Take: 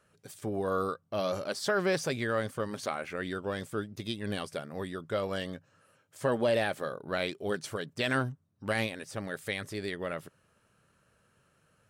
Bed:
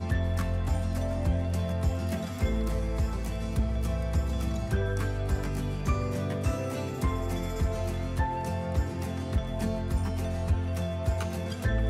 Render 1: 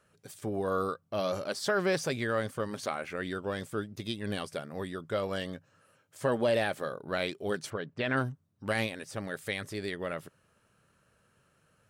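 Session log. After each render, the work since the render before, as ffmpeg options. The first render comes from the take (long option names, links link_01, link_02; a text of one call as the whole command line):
ffmpeg -i in.wav -filter_complex "[0:a]asplit=3[link_01][link_02][link_03];[link_01]afade=type=out:start_time=7.69:duration=0.02[link_04];[link_02]lowpass=2600,afade=type=in:start_time=7.69:duration=0.02,afade=type=out:start_time=8.16:duration=0.02[link_05];[link_03]afade=type=in:start_time=8.16:duration=0.02[link_06];[link_04][link_05][link_06]amix=inputs=3:normalize=0" out.wav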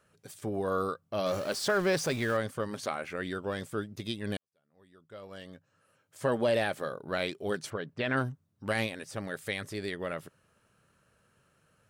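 ffmpeg -i in.wav -filter_complex "[0:a]asettb=1/sr,asplit=3[link_01][link_02][link_03];[link_01]atrim=end=1.264[link_04];[link_02]atrim=start=1.26:end=2.37,asetpts=PTS-STARTPTS,afade=type=in:duration=0.004:curve=qsin,afade=type=out:start_time=1.106:duration=0.004:curve=qsin,aeval=exprs='val(0)+0.5*0.0119*sgn(val(0))':channel_layout=same[link_05];[link_03]atrim=start=2.366[link_06];[link_04][link_05]acrossfade=duration=0.004:curve1=hsin:curve2=qsin[link_07];[link_07][link_06]acrossfade=duration=0.004:curve1=qsin:curve2=hsin,asplit=2[link_08][link_09];[link_08]atrim=end=4.37,asetpts=PTS-STARTPTS,afade=type=out:start_time=4.366:duration=0.004:curve=hsin[link_10];[link_09]atrim=start=4.37,asetpts=PTS-STARTPTS,afade=type=in:duration=1.91:curve=qua[link_11];[link_10][link_11]concat=n=2:v=0:a=1" out.wav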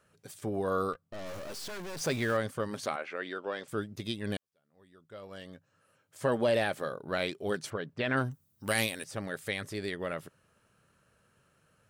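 ffmpeg -i in.wav -filter_complex "[0:a]asplit=3[link_01][link_02][link_03];[link_01]afade=type=out:start_time=0.92:duration=0.02[link_04];[link_02]aeval=exprs='(tanh(100*val(0)+0.75)-tanh(0.75))/100':channel_layout=same,afade=type=in:start_time=0.92:duration=0.02,afade=type=out:start_time=2:duration=0.02[link_05];[link_03]afade=type=in:start_time=2:duration=0.02[link_06];[link_04][link_05][link_06]amix=inputs=3:normalize=0,asettb=1/sr,asplit=3[link_07][link_08][link_09];[link_07]atrim=end=2.964[link_10];[link_08]atrim=start=2.96:end=3.68,asetpts=PTS-STARTPTS,afade=type=in:duration=0.004:curve=qsin,afade=type=out:start_time=0.716:duration=0.004:curve=qsin,highpass=360,lowpass=4400[link_11];[link_09]atrim=start=3.676[link_12];[link_10][link_11]acrossfade=duration=0.004:curve1=hsin:curve2=qsin[link_13];[link_13][link_12]acrossfade=duration=0.004:curve1=qsin:curve2=hsin,asettb=1/sr,asplit=3[link_14][link_15][link_16];[link_14]atrim=end=8.314[link_17];[link_15]atrim=start=8.31:end=9.04,asetpts=PTS-STARTPTS,afade=type=in:duration=0.004:curve=qsin,afade=type=out:start_time=0.726:duration=0.004:curve=qsin,aemphasis=mode=production:type=75fm[link_18];[link_16]atrim=start=9.036[link_19];[link_17][link_18]acrossfade=duration=0.004:curve1=hsin:curve2=qsin[link_20];[link_20][link_19]acrossfade=duration=0.004:curve1=qsin:curve2=hsin" out.wav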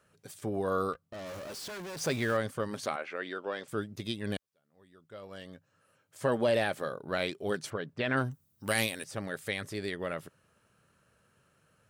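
ffmpeg -i in.wav -af "highpass=41" out.wav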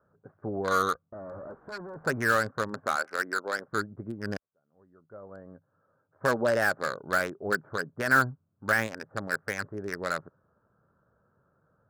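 ffmpeg -i in.wav -filter_complex "[0:a]lowpass=frequency=1500:width_type=q:width=4.4,acrossover=split=730|950[link_01][link_02][link_03];[link_03]acrusher=bits=4:mix=0:aa=0.5[link_04];[link_01][link_02][link_04]amix=inputs=3:normalize=0" out.wav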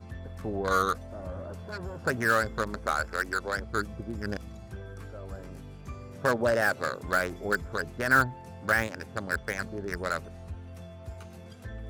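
ffmpeg -i in.wav -i bed.wav -filter_complex "[1:a]volume=-13.5dB[link_01];[0:a][link_01]amix=inputs=2:normalize=0" out.wav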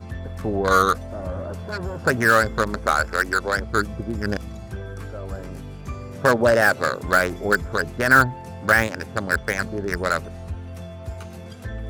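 ffmpeg -i in.wav -af "volume=8.5dB,alimiter=limit=-3dB:level=0:latency=1" out.wav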